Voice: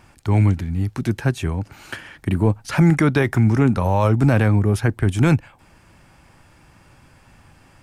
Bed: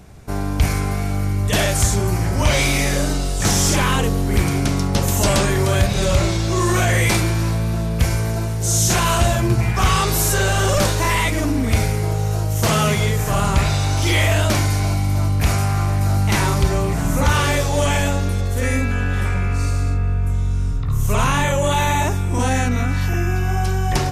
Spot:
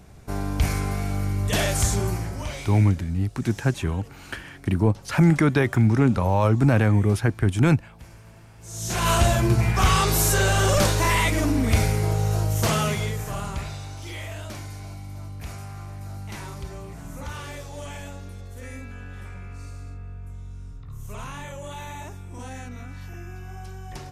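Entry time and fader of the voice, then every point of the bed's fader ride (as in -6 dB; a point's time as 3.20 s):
2.40 s, -2.5 dB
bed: 2.05 s -5 dB
2.98 s -28 dB
8.54 s -28 dB
9.09 s -2.5 dB
12.47 s -2.5 dB
13.99 s -18.5 dB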